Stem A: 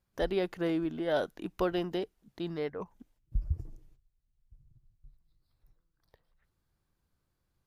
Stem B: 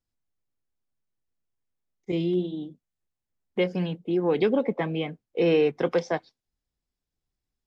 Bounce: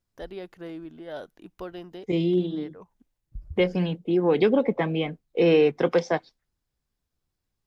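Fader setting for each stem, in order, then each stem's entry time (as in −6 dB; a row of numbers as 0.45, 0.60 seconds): −7.5, +2.5 decibels; 0.00, 0.00 seconds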